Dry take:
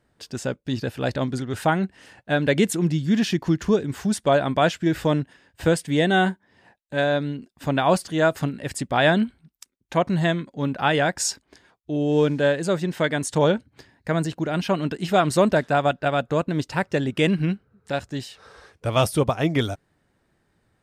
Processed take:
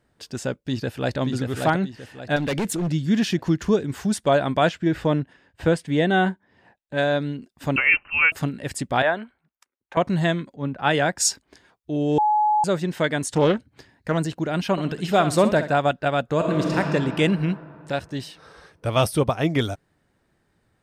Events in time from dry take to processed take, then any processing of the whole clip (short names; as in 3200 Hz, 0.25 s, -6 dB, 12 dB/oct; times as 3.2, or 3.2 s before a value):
0.56–1.18 echo throw 0.58 s, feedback 35%, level -4 dB
2.36–2.89 overloaded stage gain 21 dB
4.69–6.97 LPF 3000 Hz 6 dB/oct
7.76–8.32 inverted band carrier 2900 Hz
9.02–9.97 three-band isolator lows -18 dB, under 470 Hz, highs -16 dB, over 2200 Hz
10.56–11.29 three-band expander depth 70%
12.18–12.64 bleep 847 Hz -16 dBFS
13.29–14.18 Doppler distortion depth 0.24 ms
14.71–15.73 flutter echo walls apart 11 m, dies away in 0.35 s
16.35–16.78 reverb throw, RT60 2.9 s, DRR -1 dB
17.94–19.44 notch 7100 Hz, Q 7.4